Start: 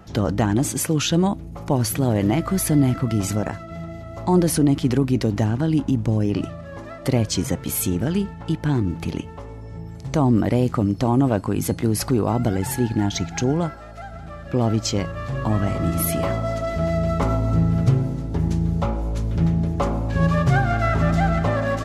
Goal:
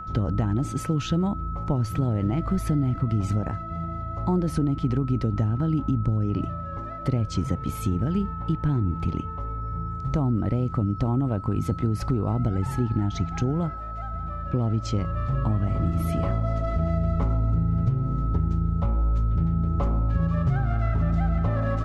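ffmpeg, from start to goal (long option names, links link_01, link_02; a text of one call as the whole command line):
ffmpeg -i in.wav -af "aemphasis=mode=reproduction:type=bsi,aeval=exprs='val(0)+0.0398*sin(2*PI*1300*n/s)':channel_layout=same,acompressor=threshold=-13dB:ratio=6,volume=-6.5dB" out.wav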